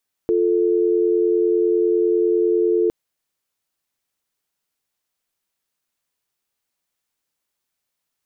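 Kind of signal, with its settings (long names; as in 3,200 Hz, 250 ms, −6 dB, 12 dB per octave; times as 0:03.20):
call progress tone dial tone, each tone −17.5 dBFS 2.61 s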